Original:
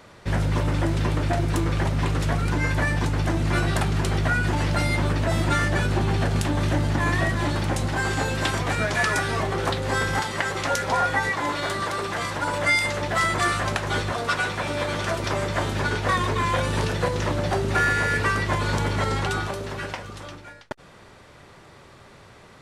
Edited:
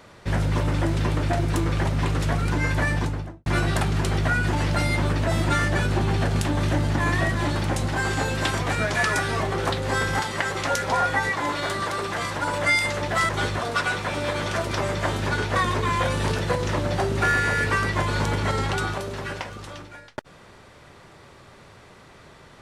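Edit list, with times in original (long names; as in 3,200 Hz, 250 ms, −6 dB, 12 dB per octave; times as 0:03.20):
0:02.92–0:03.46: fade out and dull
0:13.29–0:13.82: remove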